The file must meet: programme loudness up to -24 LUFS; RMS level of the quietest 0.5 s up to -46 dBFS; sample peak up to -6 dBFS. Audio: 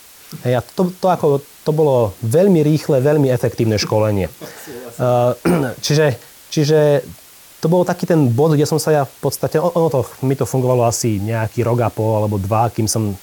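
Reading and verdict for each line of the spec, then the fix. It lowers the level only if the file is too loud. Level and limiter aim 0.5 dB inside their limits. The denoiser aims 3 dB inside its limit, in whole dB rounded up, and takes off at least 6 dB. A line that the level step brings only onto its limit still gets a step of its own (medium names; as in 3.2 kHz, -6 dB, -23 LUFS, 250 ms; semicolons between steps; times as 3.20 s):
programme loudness -16.5 LUFS: fail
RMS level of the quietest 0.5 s -42 dBFS: fail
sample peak -4.5 dBFS: fail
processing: trim -8 dB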